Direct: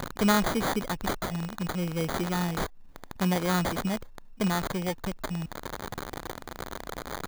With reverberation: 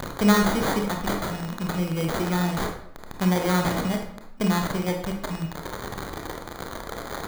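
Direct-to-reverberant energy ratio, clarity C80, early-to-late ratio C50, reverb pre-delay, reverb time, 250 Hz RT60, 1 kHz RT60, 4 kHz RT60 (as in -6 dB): 2.5 dB, 9.0 dB, 5.5 dB, 25 ms, 0.70 s, 0.75 s, 0.70 s, 0.50 s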